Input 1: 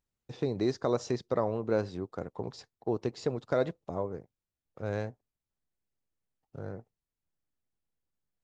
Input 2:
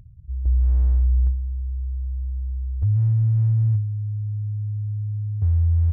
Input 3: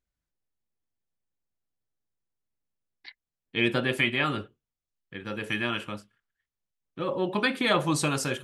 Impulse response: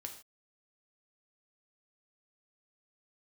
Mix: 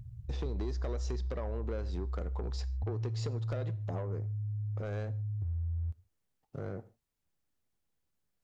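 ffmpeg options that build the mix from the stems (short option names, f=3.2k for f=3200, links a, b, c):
-filter_complex "[0:a]acompressor=threshold=-34dB:ratio=6,asoftclip=type=tanh:threshold=-33dB,volume=2dB,asplit=2[a][b];[b]volume=-5dB[c];[1:a]equalizer=f=120:t=o:w=0.21:g=12,acompressor=threshold=-28dB:ratio=6,volume=-6dB,asplit=2[d][e];[e]volume=-6.5dB[f];[3:a]atrim=start_sample=2205[g];[c][f]amix=inputs=2:normalize=0[h];[h][g]afir=irnorm=-1:irlink=0[i];[a][d][i]amix=inputs=3:normalize=0,acompressor=threshold=-34dB:ratio=2"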